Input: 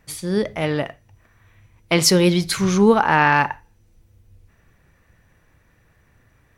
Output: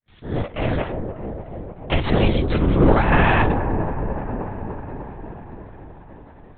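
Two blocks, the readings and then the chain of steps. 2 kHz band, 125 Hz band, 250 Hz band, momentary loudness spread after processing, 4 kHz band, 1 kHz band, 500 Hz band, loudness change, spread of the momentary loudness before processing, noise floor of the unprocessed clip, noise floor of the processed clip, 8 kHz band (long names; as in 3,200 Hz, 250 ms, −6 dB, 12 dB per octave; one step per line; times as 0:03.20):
−3.0 dB, +4.0 dB, −1.5 dB, 20 LU, −8.5 dB, −2.5 dB, −1.5 dB, −3.5 dB, 11 LU, −60 dBFS, −45 dBFS, below −40 dB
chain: fade in at the beginning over 0.59 s
high-pass filter 210 Hz 12 dB per octave
low-shelf EQ 360 Hz +7.5 dB
in parallel at −2 dB: brickwall limiter −15 dBFS, peak gain reduction 15 dB
on the sum: half-wave rectification
on a send: delay with a low-pass on its return 300 ms, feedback 73%, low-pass 870 Hz, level −6.5 dB
on the sum: linear-prediction vocoder at 8 kHz whisper
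level −4 dB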